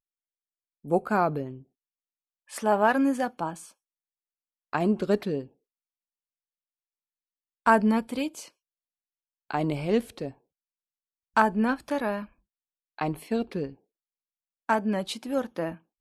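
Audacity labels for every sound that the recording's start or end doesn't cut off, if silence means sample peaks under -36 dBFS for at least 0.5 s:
0.850000	1.560000	sound
2.530000	3.640000	sound
4.730000	5.440000	sound
7.660000	8.440000	sound
9.510000	10.290000	sound
11.370000	12.240000	sound
12.990000	13.700000	sound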